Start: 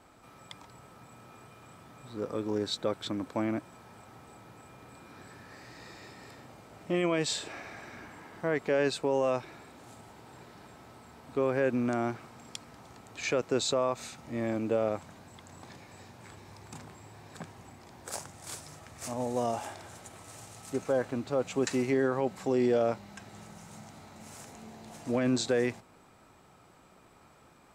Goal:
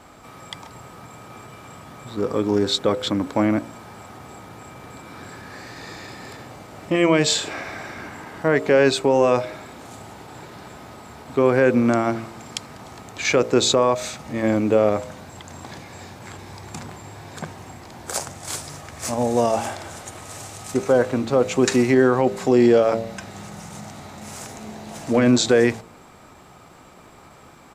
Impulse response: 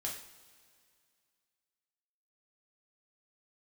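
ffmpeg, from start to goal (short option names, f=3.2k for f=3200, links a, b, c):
-af "acontrast=80,bandreject=f=58.33:t=h:w=4,bandreject=f=116.66:t=h:w=4,bandreject=f=174.99:t=h:w=4,bandreject=f=233.32:t=h:w=4,bandreject=f=291.65:t=h:w=4,bandreject=f=349.98:t=h:w=4,bandreject=f=408.31:t=h:w=4,bandreject=f=466.64:t=h:w=4,bandreject=f=524.97:t=h:w=4,bandreject=f=583.3:t=h:w=4,bandreject=f=641.63:t=h:w=4,bandreject=f=699.96:t=h:w=4,asetrate=42845,aresample=44100,atempo=1.0293,volume=5dB"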